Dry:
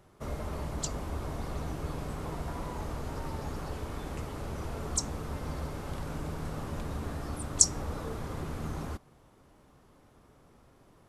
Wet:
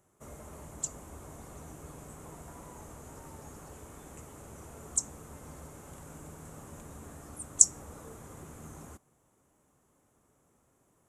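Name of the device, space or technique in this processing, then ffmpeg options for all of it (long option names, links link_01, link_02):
budget condenser microphone: -af "highpass=frequency=85:poles=1,highshelf=frequency=5800:width_type=q:width=3:gain=7.5,volume=-9.5dB"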